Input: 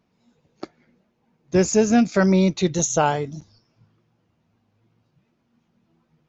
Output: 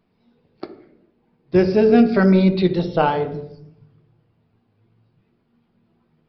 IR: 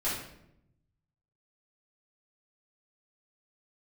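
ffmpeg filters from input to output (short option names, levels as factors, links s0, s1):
-filter_complex "[0:a]asplit=2[s0][s1];[s1]equalizer=f=440:t=o:w=0.41:g=11.5[s2];[1:a]atrim=start_sample=2205,lowpass=3500,lowshelf=f=170:g=6.5[s3];[s2][s3]afir=irnorm=-1:irlink=0,volume=0.168[s4];[s0][s4]amix=inputs=2:normalize=0,aresample=11025,aresample=44100"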